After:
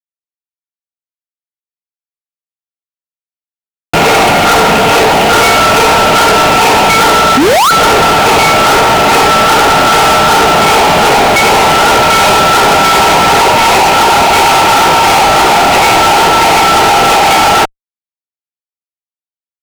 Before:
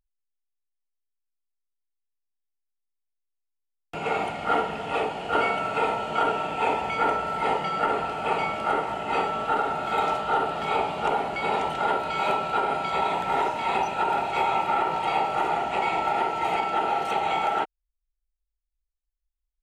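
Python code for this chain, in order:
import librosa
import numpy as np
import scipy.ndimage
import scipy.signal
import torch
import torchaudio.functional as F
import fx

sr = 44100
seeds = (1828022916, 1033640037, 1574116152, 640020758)

y = fx.spec_paint(x, sr, seeds[0], shape='rise', start_s=7.37, length_s=0.34, low_hz=240.0, high_hz=1500.0, level_db=-17.0)
y = fx.fuzz(y, sr, gain_db=41.0, gate_db=-49.0)
y = F.gain(torch.from_numpy(y), 7.5).numpy()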